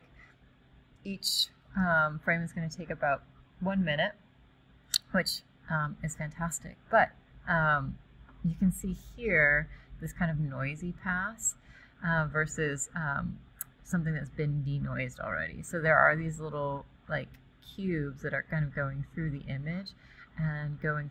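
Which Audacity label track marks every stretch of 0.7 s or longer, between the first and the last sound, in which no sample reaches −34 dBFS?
4.090000	4.940000	silence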